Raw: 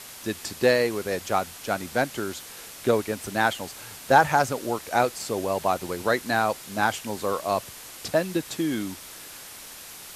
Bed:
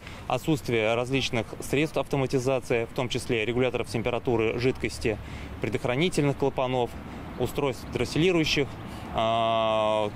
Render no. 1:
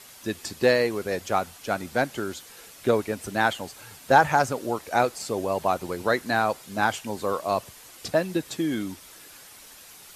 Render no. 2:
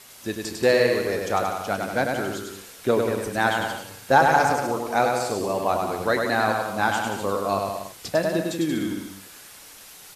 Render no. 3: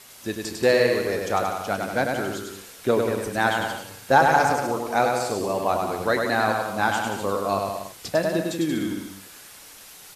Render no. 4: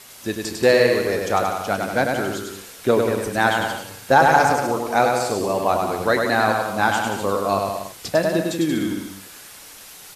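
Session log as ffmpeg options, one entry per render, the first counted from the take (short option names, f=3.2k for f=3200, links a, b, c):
-af "afftdn=nr=7:nf=-43"
-filter_complex "[0:a]asplit=2[a][b];[b]adelay=30,volume=-13.5dB[c];[a][c]amix=inputs=2:normalize=0,aecho=1:1:100|180|244|295.2|336.2:0.631|0.398|0.251|0.158|0.1"
-af anull
-af "volume=3.5dB,alimiter=limit=-2dB:level=0:latency=1"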